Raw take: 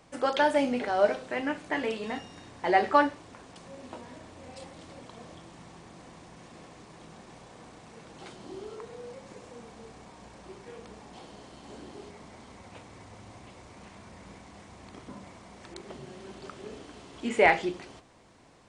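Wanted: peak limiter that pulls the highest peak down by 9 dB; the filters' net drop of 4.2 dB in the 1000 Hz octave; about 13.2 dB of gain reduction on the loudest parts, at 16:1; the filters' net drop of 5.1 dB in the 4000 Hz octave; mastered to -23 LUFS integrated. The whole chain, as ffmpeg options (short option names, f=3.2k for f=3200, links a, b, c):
-af "equalizer=f=1k:t=o:g=-5.5,equalizer=f=4k:t=o:g=-7,acompressor=threshold=-32dB:ratio=16,volume=22.5dB,alimiter=limit=-8.5dB:level=0:latency=1"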